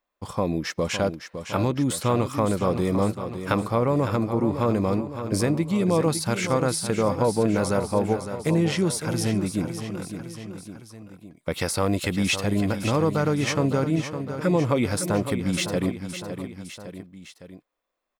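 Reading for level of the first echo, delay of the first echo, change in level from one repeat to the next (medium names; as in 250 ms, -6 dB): -9.5 dB, 559 ms, -4.5 dB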